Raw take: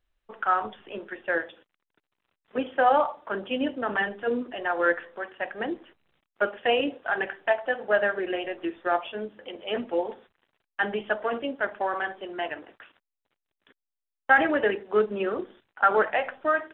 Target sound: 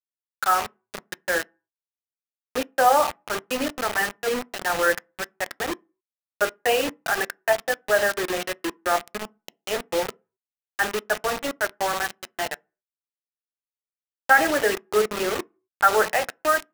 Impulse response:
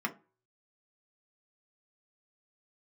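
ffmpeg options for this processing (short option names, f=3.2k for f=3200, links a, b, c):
-filter_complex "[0:a]bass=f=250:g=-8,treble=f=4k:g=-10,acrusher=bits=4:mix=0:aa=0.000001,asplit=2[a][b];[1:a]atrim=start_sample=2205,afade=t=out:st=0.32:d=0.01,atrim=end_sample=14553[c];[b][c]afir=irnorm=-1:irlink=0,volume=-19.5dB[d];[a][d]amix=inputs=2:normalize=0,volume=2dB"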